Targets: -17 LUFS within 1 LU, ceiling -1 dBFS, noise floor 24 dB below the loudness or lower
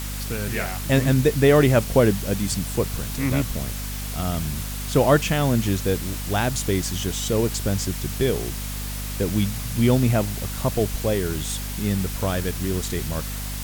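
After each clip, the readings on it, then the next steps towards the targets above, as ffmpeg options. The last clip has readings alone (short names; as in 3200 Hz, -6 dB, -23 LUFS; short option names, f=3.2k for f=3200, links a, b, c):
hum 50 Hz; harmonics up to 250 Hz; hum level -28 dBFS; noise floor -30 dBFS; noise floor target -47 dBFS; loudness -23.0 LUFS; peak -4.5 dBFS; loudness target -17.0 LUFS
-> -af "bandreject=f=50:t=h:w=4,bandreject=f=100:t=h:w=4,bandreject=f=150:t=h:w=4,bandreject=f=200:t=h:w=4,bandreject=f=250:t=h:w=4"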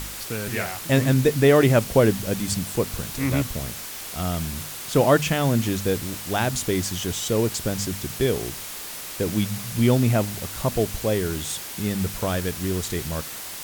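hum none; noise floor -35 dBFS; noise floor target -48 dBFS
-> -af "afftdn=nr=13:nf=-35"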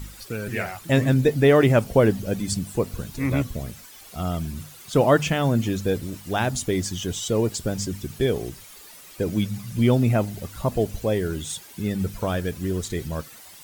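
noise floor -45 dBFS; noise floor target -48 dBFS
-> -af "afftdn=nr=6:nf=-45"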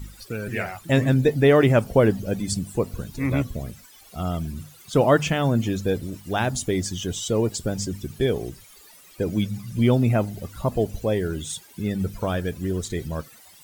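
noise floor -50 dBFS; loudness -24.0 LUFS; peak -5.0 dBFS; loudness target -17.0 LUFS
-> -af "volume=7dB,alimiter=limit=-1dB:level=0:latency=1"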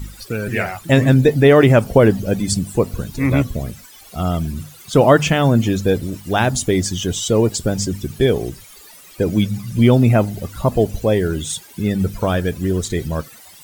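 loudness -17.5 LUFS; peak -1.0 dBFS; noise floor -43 dBFS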